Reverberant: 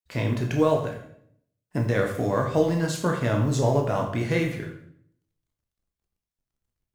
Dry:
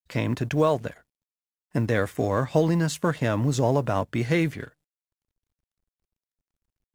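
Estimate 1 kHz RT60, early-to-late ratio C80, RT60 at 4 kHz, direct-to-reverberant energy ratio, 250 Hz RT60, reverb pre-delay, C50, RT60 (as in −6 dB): 0.60 s, 9.5 dB, 0.55 s, 1.5 dB, 0.90 s, 15 ms, 6.5 dB, 0.65 s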